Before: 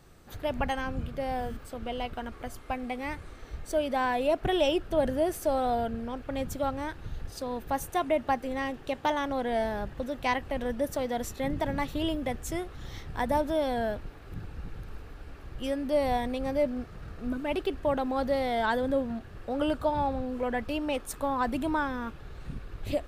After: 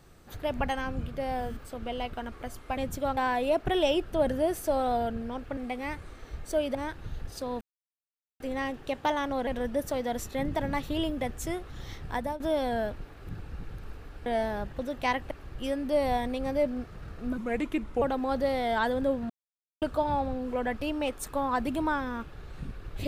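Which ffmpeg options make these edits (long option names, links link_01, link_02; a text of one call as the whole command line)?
ffmpeg -i in.wav -filter_complex "[0:a]asplit=15[link_01][link_02][link_03][link_04][link_05][link_06][link_07][link_08][link_09][link_10][link_11][link_12][link_13][link_14][link_15];[link_01]atrim=end=2.772[link_16];[link_02]atrim=start=6.348:end=6.752[link_17];[link_03]atrim=start=3.948:end=6.352[link_18];[link_04]atrim=start=2.768:end=3.952[link_19];[link_05]atrim=start=6.748:end=7.61,asetpts=PTS-STARTPTS,afade=type=out:start_time=0.858:duration=0.004:curve=hsin[link_20];[link_06]atrim=start=7.61:end=8.4,asetpts=PTS-STARTPTS,volume=0[link_21];[link_07]atrim=start=8.4:end=9.472,asetpts=PTS-STARTPTS,afade=type=in:duration=0.004:curve=hsin[link_22];[link_08]atrim=start=10.518:end=13.45,asetpts=PTS-STARTPTS,afade=type=out:start_time=2.632:duration=0.3:silence=0.177828[link_23];[link_09]atrim=start=13.45:end=15.312,asetpts=PTS-STARTPTS,afade=type=in:duration=0.004:curve=hsin:silence=0.177828[link_24];[link_10]atrim=start=9.468:end=10.522[link_25];[link_11]atrim=start=15.308:end=17.384[link_26];[link_12]atrim=start=17.38:end=17.89,asetpts=PTS-STARTPTS,asetrate=35280,aresample=44100[link_27];[link_13]atrim=start=17.886:end=19.17,asetpts=PTS-STARTPTS,afade=type=out:start_time=1.28:duration=0.004:curve=hsin[link_28];[link_14]atrim=start=19.17:end=19.69,asetpts=PTS-STARTPTS,volume=0[link_29];[link_15]atrim=start=19.69,asetpts=PTS-STARTPTS,afade=type=in:duration=0.004:curve=hsin[link_30];[link_16][link_17]acrossfade=duration=0.004:curve1=hsin:curve2=hsin[link_31];[link_31][link_18]acrossfade=duration=0.004:curve1=hsin:curve2=hsin[link_32];[link_32][link_19]acrossfade=duration=0.004:curve1=hsin:curve2=hsin[link_33];[link_20][link_21][link_22]concat=n=3:v=0:a=1[link_34];[link_33][link_34]acrossfade=duration=0.004:curve1=hsin:curve2=hsin[link_35];[link_23][link_24]concat=n=2:v=0:a=1[link_36];[link_35][link_36]acrossfade=duration=0.004:curve1=hsin:curve2=hsin[link_37];[link_37][link_25]acrossfade=duration=0.004:curve1=hsin:curve2=hsin[link_38];[link_38][link_26]acrossfade=duration=0.004:curve1=hsin:curve2=hsin[link_39];[link_39][link_27]acrossfade=duration=0.004:curve1=hsin:curve2=hsin[link_40];[link_28][link_29][link_30]concat=n=3:v=0:a=1[link_41];[link_40][link_41]acrossfade=duration=0.004:curve1=hsin:curve2=hsin" out.wav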